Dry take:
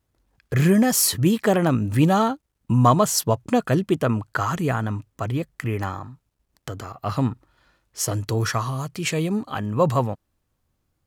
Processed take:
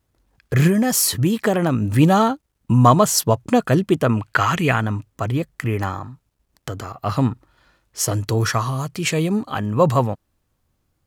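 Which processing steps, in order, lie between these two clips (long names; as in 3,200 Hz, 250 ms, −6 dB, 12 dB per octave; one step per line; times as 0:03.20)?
0:00.67–0:01.83: downward compressor 4 to 1, threshold −18 dBFS, peak gain reduction 5 dB
0:04.17–0:04.81: parametric band 2,500 Hz +11 dB 1.1 octaves
level +3.5 dB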